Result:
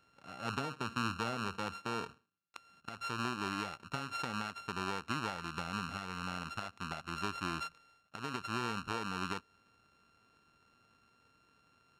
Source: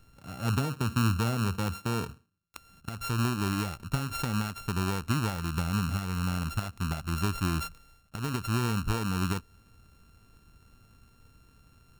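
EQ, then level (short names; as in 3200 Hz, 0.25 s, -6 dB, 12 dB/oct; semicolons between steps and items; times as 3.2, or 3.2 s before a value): HPF 380 Hz 6 dB/oct; tape spacing loss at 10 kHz 22 dB; tilt +2 dB/oct; 0.0 dB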